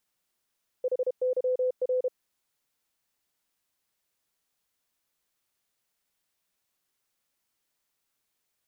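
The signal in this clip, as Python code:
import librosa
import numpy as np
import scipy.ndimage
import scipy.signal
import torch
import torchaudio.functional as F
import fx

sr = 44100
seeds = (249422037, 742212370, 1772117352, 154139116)

y = fx.morse(sr, text='HYR', wpm=32, hz=507.0, level_db=-23.0)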